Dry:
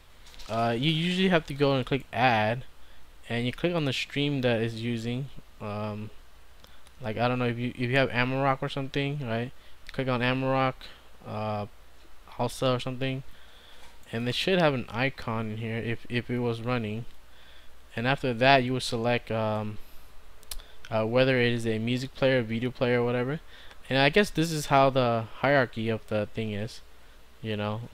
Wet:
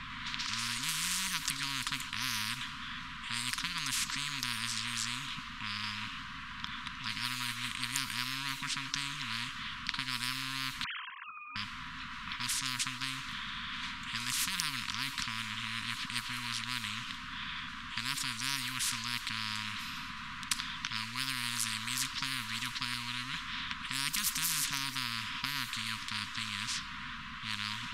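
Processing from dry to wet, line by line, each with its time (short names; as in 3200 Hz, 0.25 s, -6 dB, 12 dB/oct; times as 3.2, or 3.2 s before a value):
7.08–7.68 comb 6.5 ms, depth 60%
10.84–11.56 sine-wave speech
22.94–23.34 band shelf 810 Hz -12.5 dB 3 oct
whole clip: FFT band-reject 270–950 Hz; low-pass opened by the level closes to 2700 Hz, open at -24 dBFS; spectral compressor 10:1; gain -3 dB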